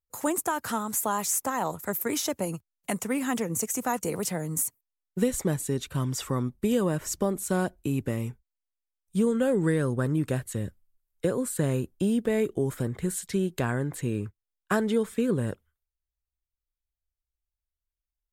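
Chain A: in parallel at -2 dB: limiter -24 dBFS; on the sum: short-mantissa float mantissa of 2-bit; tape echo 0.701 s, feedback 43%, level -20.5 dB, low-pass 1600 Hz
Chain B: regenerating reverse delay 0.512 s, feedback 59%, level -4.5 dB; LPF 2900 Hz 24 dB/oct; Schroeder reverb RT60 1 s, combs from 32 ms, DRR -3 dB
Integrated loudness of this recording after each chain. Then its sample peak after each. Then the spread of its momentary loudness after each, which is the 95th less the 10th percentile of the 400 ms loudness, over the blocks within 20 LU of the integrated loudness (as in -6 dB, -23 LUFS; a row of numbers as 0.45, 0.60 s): -25.5, -23.0 LUFS; -11.5, -6.5 dBFS; 7, 9 LU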